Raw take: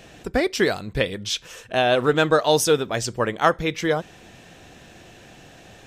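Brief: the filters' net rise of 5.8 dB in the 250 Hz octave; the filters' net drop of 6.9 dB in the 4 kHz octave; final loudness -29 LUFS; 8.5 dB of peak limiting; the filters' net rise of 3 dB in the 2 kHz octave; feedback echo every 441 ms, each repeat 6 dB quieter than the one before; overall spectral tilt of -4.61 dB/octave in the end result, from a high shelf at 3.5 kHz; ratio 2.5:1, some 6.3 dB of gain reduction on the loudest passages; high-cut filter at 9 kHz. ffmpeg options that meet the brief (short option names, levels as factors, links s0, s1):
-af "lowpass=9000,equalizer=f=250:t=o:g=8,equalizer=f=2000:t=o:g=7,highshelf=f=3500:g=-6,equalizer=f=4000:t=o:g=-7.5,acompressor=threshold=0.1:ratio=2.5,alimiter=limit=0.158:level=0:latency=1,aecho=1:1:441|882|1323|1764|2205|2646:0.501|0.251|0.125|0.0626|0.0313|0.0157,volume=0.794"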